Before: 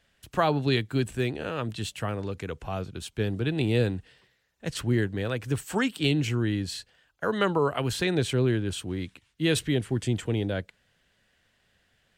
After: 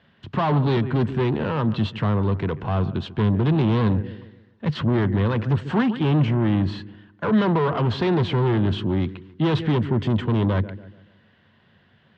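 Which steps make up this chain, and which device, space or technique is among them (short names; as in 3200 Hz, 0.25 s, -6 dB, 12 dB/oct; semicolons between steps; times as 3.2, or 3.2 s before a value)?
analogue delay pedal into a guitar amplifier (analogue delay 0.142 s, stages 2048, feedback 39%, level -19 dB; tube stage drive 31 dB, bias 0.3; speaker cabinet 88–3600 Hz, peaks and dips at 96 Hz +9 dB, 150 Hz +9 dB, 220 Hz +10 dB, 360 Hz +5 dB, 1000 Hz +7 dB, 2400 Hz -5 dB); 5.82–7.38 dynamic EQ 4600 Hz, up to -5 dB, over -58 dBFS, Q 1.3; gain +9 dB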